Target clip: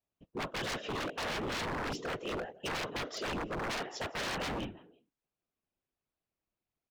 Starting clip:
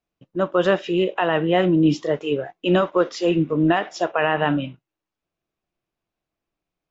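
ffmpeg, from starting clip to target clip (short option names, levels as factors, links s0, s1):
-filter_complex "[0:a]asplit=3[s0][s1][s2];[s1]adelay=168,afreqshift=59,volume=0.075[s3];[s2]adelay=336,afreqshift=118,volume=0.0269[s4];[s0][s3][s4]amix=inputs=3:normalize=0,afftfilt=real='hypot(re,im)*cos(2*PI*random(0))':imag='hypot(re,im)*sin(2*PI*random(1))':win_size=512:overlap=0.75,aeval=exprs='0.0376*(abs(mod(val(0)/0.0376+3,4)-2)-1)':c=same,volume=0.75"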